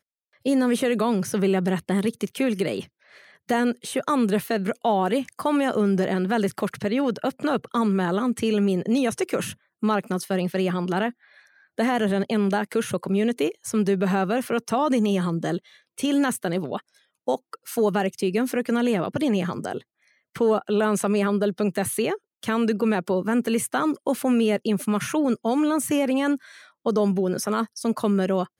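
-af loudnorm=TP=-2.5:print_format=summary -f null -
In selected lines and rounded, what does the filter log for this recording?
Input Integrated:    -24.2 LUFS
Input True Peak:      -9.5 dBTP
Input LRA:             1.8 LU
Input Threshold:     -34.4 LUFS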